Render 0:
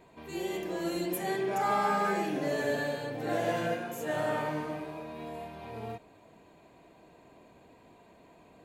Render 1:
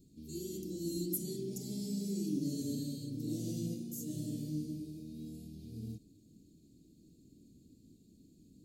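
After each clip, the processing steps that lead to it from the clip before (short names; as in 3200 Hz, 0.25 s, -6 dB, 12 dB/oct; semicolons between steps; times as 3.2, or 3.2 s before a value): Chebyshev band-stop 280–4900 Hz, order 3; gain +2 dB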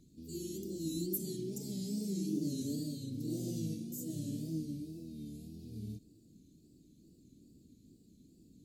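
wow and flutter 99 cents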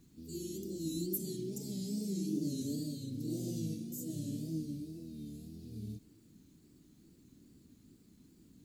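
bit-crush 12-bit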